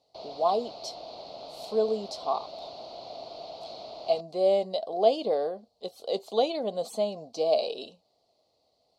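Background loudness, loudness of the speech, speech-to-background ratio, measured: -42.5 LUFS, -28.5 LUFS, 14.0 dB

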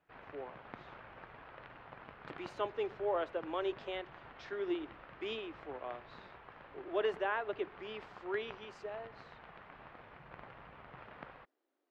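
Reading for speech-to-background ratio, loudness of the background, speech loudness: 13.5 dB, -53.5 LUFS, -40.0 LUFS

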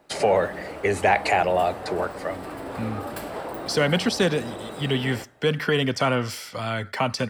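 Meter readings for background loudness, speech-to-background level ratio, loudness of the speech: -35.0 LUFS, 10.5 dB, -24.5 LUFS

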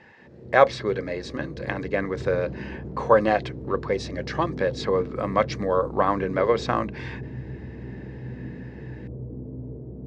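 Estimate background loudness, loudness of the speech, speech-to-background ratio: -36.5 LUFS, -25.0 LUFS, 11.5 dB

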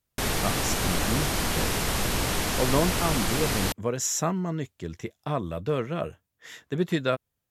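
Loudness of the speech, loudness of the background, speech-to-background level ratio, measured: -30.0 LUFS, -26.5 LUFS, -3.5 dB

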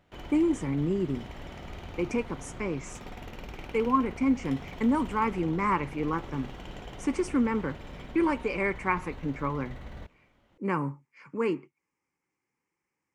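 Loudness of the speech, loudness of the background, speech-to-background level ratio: -30.0 LUFS, -44.0 LUFS, 14.0 dB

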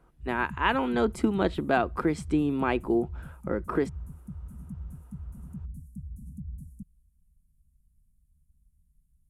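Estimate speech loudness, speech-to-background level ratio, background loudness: -28.0 LUFS, 15.0 dB, -43.0 LUFS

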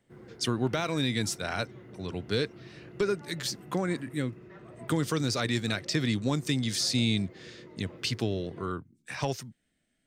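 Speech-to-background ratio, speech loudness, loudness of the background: 18.5 dB, -31.0 LUFS, -49.5 LUFS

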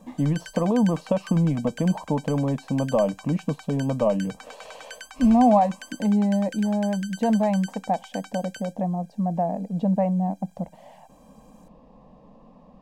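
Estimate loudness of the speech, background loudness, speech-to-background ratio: -24.0 LUFS, -42.5 LUFS, 18.5 dB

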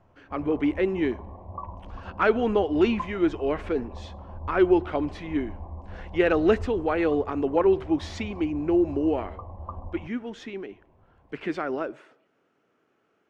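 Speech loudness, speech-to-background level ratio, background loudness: -26.0 LUFS, 15.5 dB, -41.5 LUFS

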